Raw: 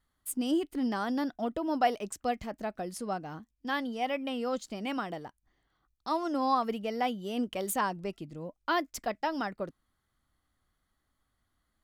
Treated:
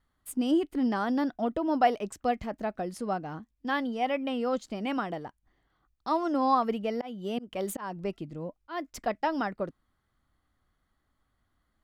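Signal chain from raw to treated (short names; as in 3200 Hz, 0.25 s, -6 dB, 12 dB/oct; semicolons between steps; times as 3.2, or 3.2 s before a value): high shelf 4000 Hz -9.5 dB; 6.48–8.93 auto swell 0.245 s; gain +3.5 dB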